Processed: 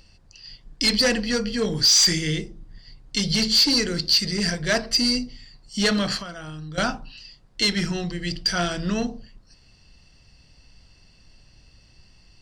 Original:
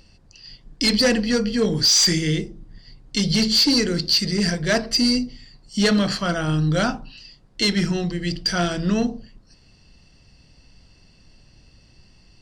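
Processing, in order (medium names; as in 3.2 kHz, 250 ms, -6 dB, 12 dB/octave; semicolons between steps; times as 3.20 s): peaking EQ 260 Hz -5 dB 2.5 oct; 6.19–6.78 s: compression 12:1, threshold -33 dBFS, peak gain reduction 12.5 dB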